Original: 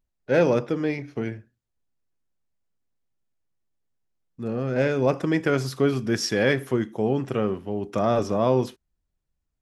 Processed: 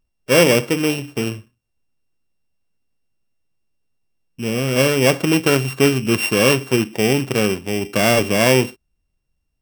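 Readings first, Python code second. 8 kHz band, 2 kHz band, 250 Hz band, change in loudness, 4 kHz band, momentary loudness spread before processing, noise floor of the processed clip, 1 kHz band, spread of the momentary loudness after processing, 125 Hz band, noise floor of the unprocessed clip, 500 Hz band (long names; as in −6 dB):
+15.5 dB, +10.5 dB, +6.0 dB, +7.5 dB, +14.0 dB, 10 LU, −73 dBFS, +5.0 dB, 10 LU, +6.5 dB, −79 dBFS, +5.5 dB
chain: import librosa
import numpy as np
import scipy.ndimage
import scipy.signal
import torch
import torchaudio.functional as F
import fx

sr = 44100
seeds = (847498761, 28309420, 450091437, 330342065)

y = np.r_[np.sort(x[:len(x) // 16 * 16].reshape(-1, 16), axis=1).ravel(), x[len(x) // 16 * 16:]]
y = F.gain(torch.from_numpy(y), 6.5).numpy()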